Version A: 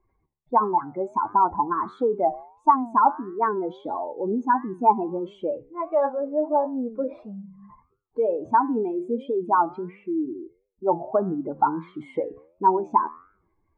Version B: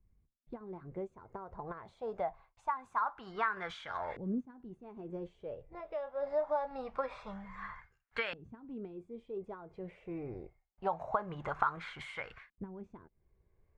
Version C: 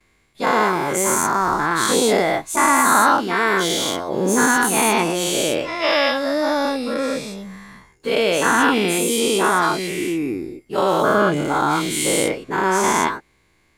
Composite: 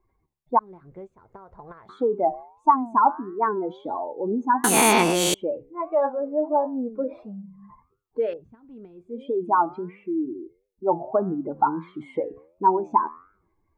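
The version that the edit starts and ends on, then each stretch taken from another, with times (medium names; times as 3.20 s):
A
0.59–1.89 s: from B
4.64–5.34 s: from C
8.31–9.17 s: from B, crossfade 0.24 s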